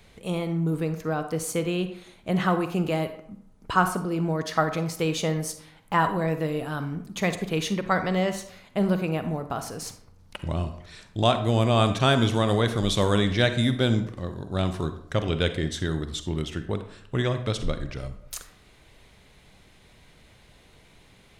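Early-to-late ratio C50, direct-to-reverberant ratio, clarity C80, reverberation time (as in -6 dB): 10.0 dB, 9.0 dB, 13.0 dB, 0.65 s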